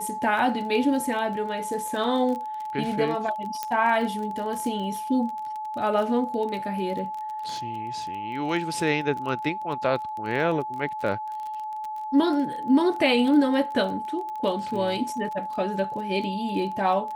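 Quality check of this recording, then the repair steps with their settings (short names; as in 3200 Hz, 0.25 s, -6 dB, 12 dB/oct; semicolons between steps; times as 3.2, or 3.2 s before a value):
crackle 23/s -31 dBFS
tone 860 Hz -30 dBFS
3.63 pop -13 dBFS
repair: de-click; notch 860 Hz, Q 30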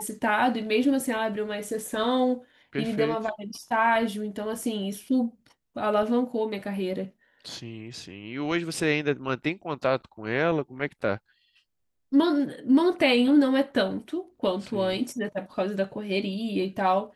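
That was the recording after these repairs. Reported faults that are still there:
none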